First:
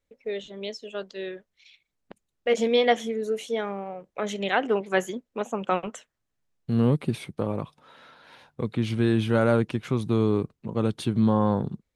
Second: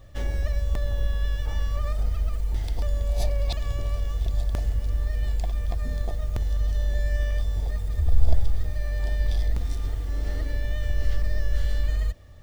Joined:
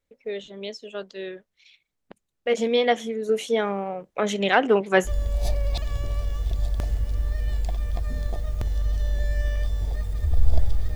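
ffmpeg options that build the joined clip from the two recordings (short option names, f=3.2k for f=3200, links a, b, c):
-filter_complex "[0:a]asettb=1/sr,asplit=3[a][b][c];[a]atrim=end=3.294[d];[b]atrim=start=3.29:end=5.1,asetpts=PTS-STARTPTS,afade=t=in:d=0.004:c=qsin,afade=t=out:st=1.806:d=0.004:c=qsin,acontrast=32[e];[c]atrim=start=5.096[f];[d][e]acrossfade=d=0.004:c1=hsin:c2=qsin[g];[g][f]acrossfade=d=0.004:c1=qsin:c2=hsin,apad=whole_dur=10.95,atrim=end=10.95,atrim=end=5.1,asetpts=PTS-STARTPTS[h];[1:a]atrim=start=2.79:end=8.7,asetpts=PTS-STARTPTS[i];[h][i]acrossfade=d=0.06:c1=tri:c2=tri"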